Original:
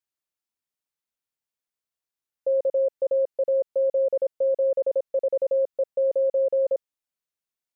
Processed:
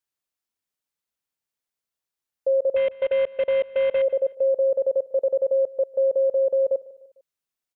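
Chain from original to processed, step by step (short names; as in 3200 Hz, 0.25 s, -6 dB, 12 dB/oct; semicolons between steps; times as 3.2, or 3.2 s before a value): 2.76–4.02 CVSD 16 kbps; on a send: feedback echo 0.15 s, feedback 45%, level -20 dB; on the sum: gain +2 dB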